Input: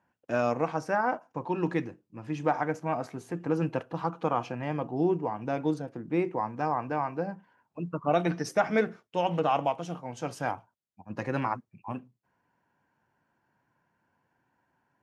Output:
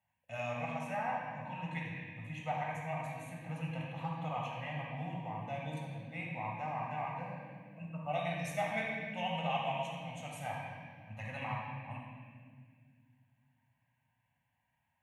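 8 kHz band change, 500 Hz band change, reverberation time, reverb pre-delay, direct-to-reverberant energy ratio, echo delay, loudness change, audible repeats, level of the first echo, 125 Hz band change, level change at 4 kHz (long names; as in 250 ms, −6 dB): −6.5 dB, −12.0 dB, 1.9 s, 17 ms, −3.0 dB, no echo audible, −9.0 dB, no echo audible, no echo audible, −5.0 dB, −1.0 dB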